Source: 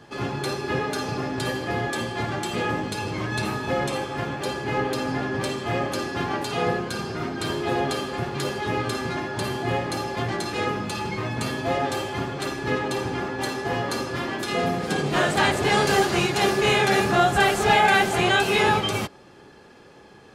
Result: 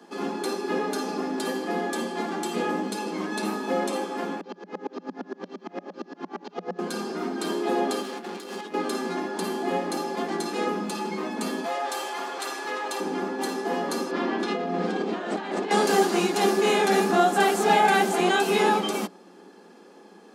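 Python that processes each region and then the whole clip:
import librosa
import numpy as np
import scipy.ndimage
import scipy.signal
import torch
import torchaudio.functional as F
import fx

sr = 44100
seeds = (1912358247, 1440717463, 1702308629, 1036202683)

y = fx.chain(x, sr, fx.cvsd(bps=32000),
    fx.high_shelf(hz=3000.0, db=-8.5),
    fx.tremolo_decay(direction='swelling', hz=8.7, depth_db=36), at=(4.41, 6.79))
y = fx.chain(y, sr, fx.peak_eq(hz=2900.0, db=4.5, octaves=1.9),
    fx.over_compress(threshold_db=-29.0, ratio=-0.5),
    fx.tube_stage(drive_db=29.0, bias=0.6), at=(8.02, 8.74))
y = fx.chain(y, sr, fx.highpass(hz=730.0, slope=12),
    fx.env_flatten(amount_pct=50), at=(11.64, 13.0))
y = fx.chain(y, sr, fx.lowpass(hz=3900.0, slope=12),
    fx.over_compress(threshold_db=-27.0, ratio=-1.0), at=(14.11, 15.71))
y = scipy.signal.sosfilt(scipy.signal.cheby1(8, 1.0, 180.0, 'highpass', fs=sr, output='sos'), y)
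y = fx.peak_eq(y, sr, hz=2300.0, db=-7.5, octaves=2.2)
y = fx.notch(y, sr, hz=590.0, q=12.0)
y = y * 10.0 ** (2.0 / 20.0)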